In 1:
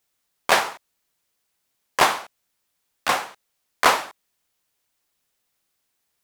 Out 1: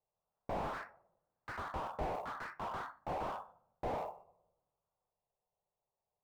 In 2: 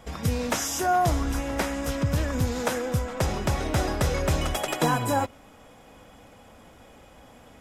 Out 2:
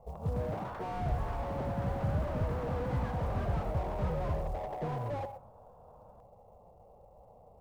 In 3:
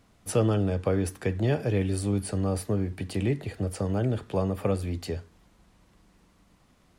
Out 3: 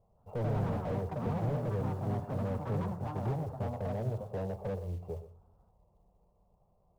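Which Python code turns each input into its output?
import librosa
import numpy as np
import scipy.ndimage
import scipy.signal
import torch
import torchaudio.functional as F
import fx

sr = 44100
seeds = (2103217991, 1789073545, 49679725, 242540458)

p1 = np.r_[np.sort(x[:len(x) // 16 * 16].reshape(-1, 16), axis=1).ravel(), x[len(x) // 16 * 16:]]
p2 = scipy.signal.sosfilt(scipy.signal.butter(4, 1000.0, 'lowpass', fs=sr, output='sos'), p1)
p3 = fx.low_shelf(p2, sr, hz=260.0, db=-4.5)
p4 = fx.fixed_phaser(p3, sr, hz=680.0, stages=4)
p5 = np.clip(10.0 ** (30.5 / 20.0) * p4, -1.0, 1.0) / 10.0 ** (30.5 / 20.0)
p6 = p4 + F.gain(torch.from_numpy(p5), -7.0).numpy()
p7 = fx.quant_float(p6, sr, bits=4)
p8 = p7 + fx.echo_single(p7, sr, ms=123, db=-14.5, dry=0)
p9 = fx.room_shoebox(p8, sr, seeds[0], volume_m3=3000.0, walls='furnished', distance_m=0.39)
p10 = fx.echo_pitch(p9, sr, ms=162, semitones=4, count=3, db_per_echo=-3.0)
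p11 = fx.slew_limit(p10, sr, full_power_hz=17.0)
y = F.gain(torch.from_numpy(p11), -4.0).numpy()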